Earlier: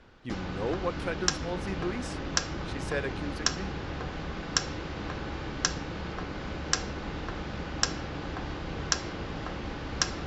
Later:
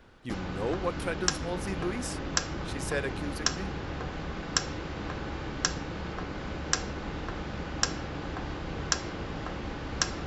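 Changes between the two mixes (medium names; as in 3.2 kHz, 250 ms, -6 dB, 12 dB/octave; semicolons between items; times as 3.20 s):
background: add peaking EQ 6.7 kHz -5.5 dB 2 oct; master: remove distance through air 80 m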